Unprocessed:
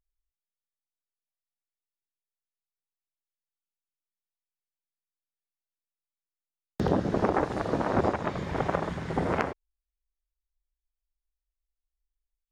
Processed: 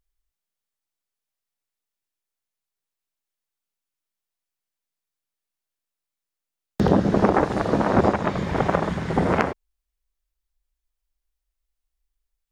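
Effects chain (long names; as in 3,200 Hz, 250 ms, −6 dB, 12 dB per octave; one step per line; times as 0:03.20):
dynamic equaliser 200 Hz, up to +5 dB, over −43 dBFS, Q 4.8
level +6.5 dB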